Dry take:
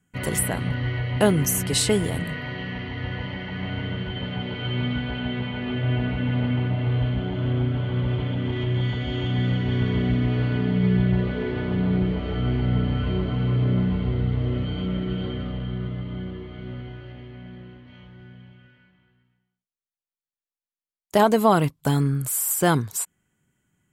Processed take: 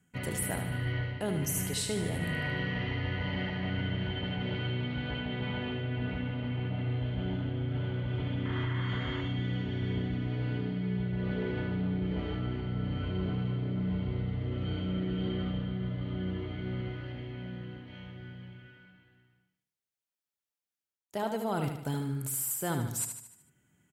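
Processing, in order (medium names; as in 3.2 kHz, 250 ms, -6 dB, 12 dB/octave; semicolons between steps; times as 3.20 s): high-pass 50 Hz; band-stop 1.1 kHz, Q 11; reverse; compression 6:1, threshold -31 dBFS, peak gain reduction 17 dB; reverse; painted sound noise, 8.45–9.21 s, 870–2200 Hz -45 dBFS; feedback delay 75 ms, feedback 51%, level -7 dB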